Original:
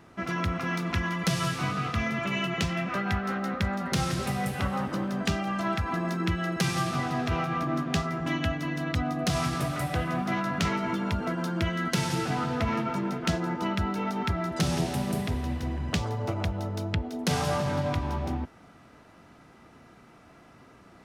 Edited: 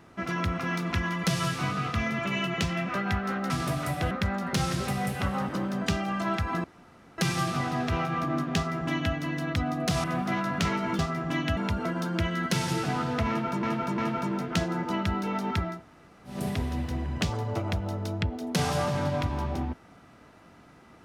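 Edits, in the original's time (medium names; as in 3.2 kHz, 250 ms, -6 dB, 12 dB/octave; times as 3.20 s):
6.03–6.57 s: room tone
7.95–8.53 s: copy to 10.99 s
9.43–10.04 s: move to 3.50 s
12.70–13.05 s: loop, 3 plays
14.45–15.08 s: room tone, crossfade 0.24 s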